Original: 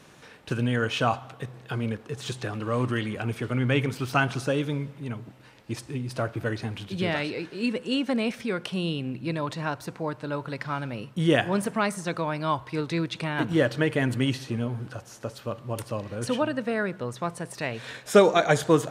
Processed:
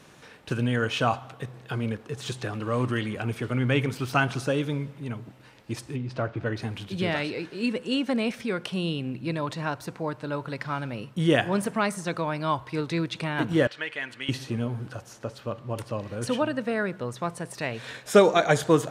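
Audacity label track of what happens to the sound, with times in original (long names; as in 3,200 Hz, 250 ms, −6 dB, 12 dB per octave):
5.960000	6.570000	high-frequency loss of the air 140 metres
13.670000	14.290000	resonant band-pass 2,500 Hz, Q 1
15.130000	16.010000	high-shelf EQ 7,900 Hz −10 dB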